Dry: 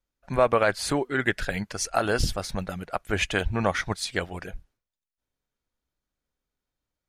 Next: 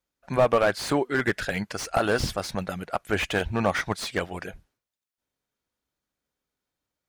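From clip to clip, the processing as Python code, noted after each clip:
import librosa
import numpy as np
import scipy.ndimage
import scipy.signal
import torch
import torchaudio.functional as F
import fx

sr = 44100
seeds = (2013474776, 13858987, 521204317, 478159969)

y = fx.highpass(x, sr, hz=130.0, slope=6)
y = fx.slew_limit(y, sr, full_power_hz=110.0)
y = F.gain(torch.from_numpy(y), 2.5).numpy()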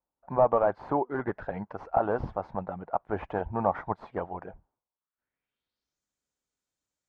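y = fx.filter_sweep_lowpass(x, sr, from_hz=900.0, to_hz=7400.0, start_s=4.9, end_s=6.03, q=3.2)
y = F.gain(torch.from_numpy(y), -6.5).numpy()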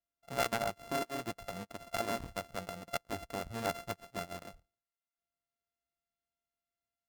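y = np.r_[np.sort(x[:len(x) // 64 * 64].reshape(-1, 64), axis=1).ravel(), x[len(x) // 64 * 64:]]
y = fx.transformer_sat(y, sr, knee_hz=860.0)
y = F.gain(torch.from_numpy(y), -6.5).numpy()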